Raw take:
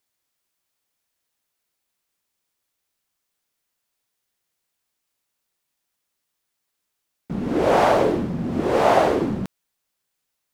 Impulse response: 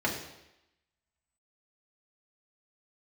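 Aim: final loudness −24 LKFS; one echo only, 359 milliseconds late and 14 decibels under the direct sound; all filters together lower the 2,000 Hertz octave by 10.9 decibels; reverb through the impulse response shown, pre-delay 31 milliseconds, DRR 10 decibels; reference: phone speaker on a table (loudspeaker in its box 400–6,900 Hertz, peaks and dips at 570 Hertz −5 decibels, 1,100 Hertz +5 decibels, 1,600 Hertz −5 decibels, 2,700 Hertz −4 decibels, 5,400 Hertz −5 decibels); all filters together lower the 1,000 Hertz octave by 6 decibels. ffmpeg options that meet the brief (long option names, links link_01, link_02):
-filter_complex "[0:a]equalizer=frequency=1000:width_type=o:gain=-7.5,equalizer=frequency=2000:width_type=o:gain=-7.5,aecho=1:1:359:0.2,asplit=2[link_01][link_02];[1:a]atrim=start_sample=2205,adelay=31[link_03];[link_02][link_03]afir=irnorm=-1:irlink=0,volume=-20dB[link_04];[link_01][link_04]amix=inputs=2:normalize=0,highpass=frequency=400:width=0.5412,highpass=frequency=400:width=1.3066,equalizer=frequency=570:width_type=q:width=4:gain=-5,equalizer=frequency=1100:width_type=q:width=4:gain=5,equalizer=frequency=1600:width_type=q:width=4:gain=-5,equalizer=frequency=2700:width_type=q:width=4:gain=-4,equalizer=frequency=5400:width_type=q:width=4:gain=-5,lowpass=frequency=6900:width=0.5412,lowpass=frequency=6900:width=1.3066,volume=2dB"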